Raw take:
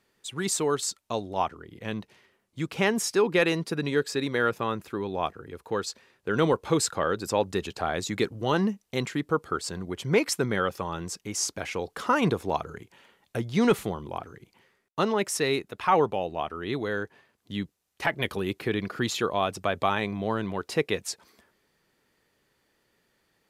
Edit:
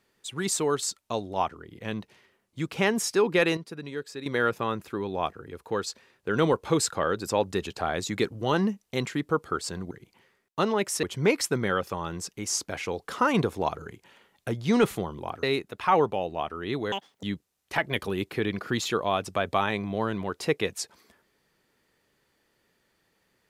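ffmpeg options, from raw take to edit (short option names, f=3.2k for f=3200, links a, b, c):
-filter_complex "[0:a]asplit=8[a][b][c][d][e][f][g][h];[a]atrim=end=3.572[i];[b]atrim=start=3.568:end=4.262,asetpts=PTS-STARTPTS,volume=-9.5dB[j];[c]atrim=start=4.258:end=9.912[k];[d]atrim=start=14.308:end=15.432[l];[e]atrim=start=9.908:end=14.312[m];[f]atrim=start=15.428:end=16.924[n];[g]atrim=start=16.92:end=17.52,asetpts=PTS-STARTPTS,asetrate=85113,aresample=44100[o];[h]atrim=start=17.516[p];[i][j]acrossfade=d=0.004:c1=hsin:c2=hsin[q];[q][k]acrossfade=d=0.004:c1=hsin:c2=hsin[r];[r][l]acrossfade=d=0.004:c1=hsin:c2=hsin[s];[s][m]acrossfade=d=0.004:c1=hsin:c2=hsin[t];[t][n]acrossfade=d=0.004:c1=hsin:c2=hsin[u];[u][o]acrossfade=d=0.004:c1=hsin:c2=hsin[v];[v][p]acrossfade=d=0.004:c1=hsin:c2=hsin"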